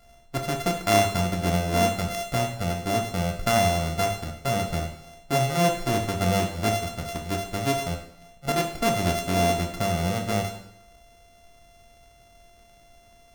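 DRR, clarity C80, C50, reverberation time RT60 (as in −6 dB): 4.0 dB, 10.5 dB, 8.0 dB, 0.80 s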